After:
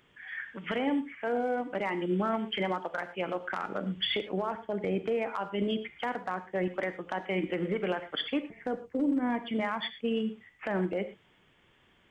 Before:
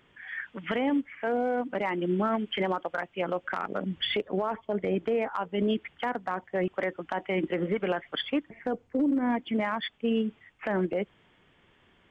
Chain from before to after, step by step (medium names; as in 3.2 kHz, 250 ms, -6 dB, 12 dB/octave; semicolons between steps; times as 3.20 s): treble shelf 4.1 kHz +6 dB; gated-style reverb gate 140 ms flat, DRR 10 dB; trim -3 dB